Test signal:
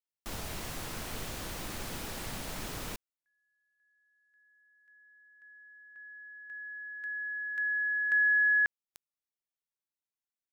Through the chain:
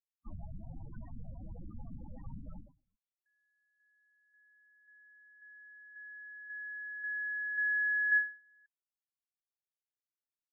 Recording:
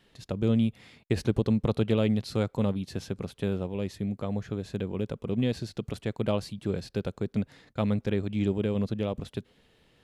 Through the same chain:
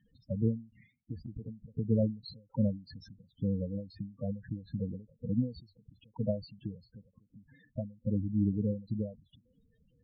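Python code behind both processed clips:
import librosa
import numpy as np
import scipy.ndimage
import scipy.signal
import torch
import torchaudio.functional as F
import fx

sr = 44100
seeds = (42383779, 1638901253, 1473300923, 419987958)

y = fx.peak_eq(x, sr, hz=390.0, db=-14.0, octaves=0.22)
y = fx.spec_topn(y, sr, count=8)
y = fx.end_taper(y, sr, db_per_s=160.0)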